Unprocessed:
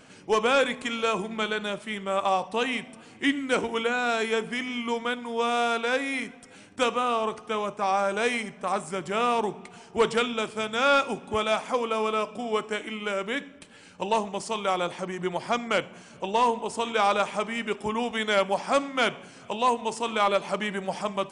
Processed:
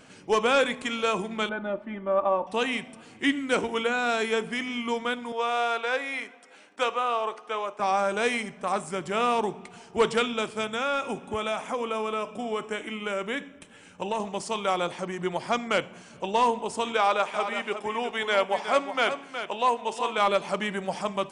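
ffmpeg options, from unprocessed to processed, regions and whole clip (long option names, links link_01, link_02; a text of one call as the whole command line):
ffmpeg -i in.wav -filter_complex "[0:a]asettb=1/sr,asplit=3[link_01][link_02][link_03];[link_01]atrim=end=1.494[link_04];[link_02]atrim=start=1.49:end=2.47,asetpts=PTS-STARTPTS,afade=type=in:duration=0.004:curve=qsin,afade=type=out:start_time=0.976:duration=0.004:curve=qsin,lowpass=1100,aecho=1:1:3.4:0.74,atrim=end_sample=43218[link_05];[link_03]atrim=start=2.466[link_06];[link_04][link_05]acrossfade=duration=0.004:curve1=hsin:curve2=qsin[link_07];[link_07][link_06]acrossfade=duration=0.004:curve1=qsin:curve2=hsin,asettb=1/sr,asplit=3[link_08][link_09][link_10];[link_08]atrim=end=5.324[link_11];[link_09]atrim=start=5.32:end=7.8,asetpts=PTS-STARTPTS,afade=type=in:duration=0.004:curve=qsin,afade=type=out:start_time=2.476:duration=0.004:curve=qsin,highpass=480,aemphasis=mode=reproduction:type=cd[link_12];[link_10]atrim=start=7.796[link_13];[link_11][link_12]acrossfade=duration=0.004:curve1=hsin:curve2=qsin[link_14];[link_14][link_13]acrossfade=duration=0.004:curve1=qsin:curve2=hsin,asettb=1/sr,asplit=3[link_15][link_16][link_17];[link_15]atrim=end=10.644[link_18];[link_16]atrim=start=10.64:end=14.2,asetpts=PTS-STARTPTS,afade=type=in:duration=0.004:curve=qsin,afade=type=out:start_time=3.556:duration=0.004:curve=qsin,equalizer=frequency=4500:width=5.2:gain=-12,acompressor=threshold=-25dB:ratio=3:attack=3.2:release=140:knee=1:detection=peak[link_19];[link_17]atrim=start=14.196[link_20];[link_18][link_19]acrossfade=duration=0.004:curve1=hsin:curve2=qsin[link_21];[link_21][link_20]acrossfade=duration=0.004:curve1=qsin:curve2=hsin,asettb=1/sr,asplit=3[link_22][link_23][link_24];[link_22]atrim=end=16.974[link_25];[link_23]atrim=start=16.97:end=20.18,asetpts=PTS-STARTPTS,afade=type=in:duration=0.004:curve=qsin,afade=type=out:start_time=3.206:duration=0.004:curve=qsin,bass=frequency=250:gain=-12,treble=frequency=4000:gain=-5,aecho=1:1:366:0.355,atrim=end_sample=141561[link_26];[link_24]atrim=start=20.176[link_27];[link_25][link_26]acrossfade=duration=0.004:curve1=hsin:curve2=qsin[link_28];[link_28][link_27]acrossfade=duration=0.004:curve1=qsin:curve2=hsin" out.wav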